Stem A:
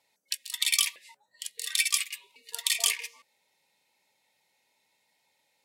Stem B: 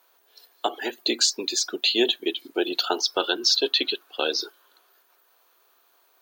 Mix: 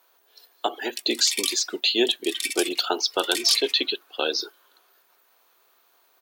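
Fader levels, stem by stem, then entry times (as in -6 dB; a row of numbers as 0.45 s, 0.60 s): -2.5 dB, 0.0 dB; 0.65 s, 0.00 s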